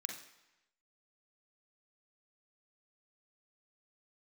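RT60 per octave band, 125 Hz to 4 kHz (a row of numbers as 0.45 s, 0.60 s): 0.95 s, 0.90 s, 0.90 s, 1.0 s, 1.0 s, 0.95 s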